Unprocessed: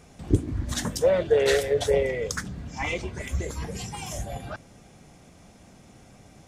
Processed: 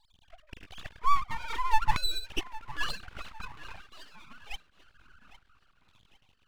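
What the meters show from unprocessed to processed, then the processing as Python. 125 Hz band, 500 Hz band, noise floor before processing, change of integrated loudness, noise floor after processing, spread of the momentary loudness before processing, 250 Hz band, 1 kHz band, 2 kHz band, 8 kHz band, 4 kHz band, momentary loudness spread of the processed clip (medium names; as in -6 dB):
-16.0 dB, -29.5 dB, -53 dBFS, -6.5 dB, -68 dBFS, 14 LU, -18.5 dB, +6.5 dB, -5.0 dB, -14.0 dB, -1.5 dB, 23 LU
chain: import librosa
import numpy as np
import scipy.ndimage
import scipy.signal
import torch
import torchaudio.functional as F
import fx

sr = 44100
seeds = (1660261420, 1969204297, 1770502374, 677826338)

p1 = fx.sine_speech(x, sr)
p2 = fx.filter_lfo_highpass(p1, sr, shape='saw_down', hz=0.51, low_hz=390.0, high_hz=1800.0, q=6.5)
p3 = np.clip(p2, -10.0 ** (-16.0 / 20.0), 10.0 ** (-16.0 / 20.0))
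p4 = p2 + (p3 * 10.0 ** (-4.5 / 20.0))
p5 = fx.fixed_phaser(p4, sr, hz=710.0, stages=8)
p6 = fx.echo_feedback(p5, sr, ms=806, feedback_pct=42, wet_db=-17.5)
p7 = np.abs(p6)
y = p7 * 10.0 ** (-2.0 / 20.0)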